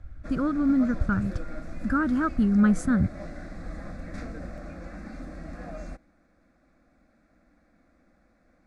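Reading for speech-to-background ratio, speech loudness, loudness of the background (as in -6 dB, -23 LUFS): 16.0 dB, -25.0 LUFS, -41.0 LUFS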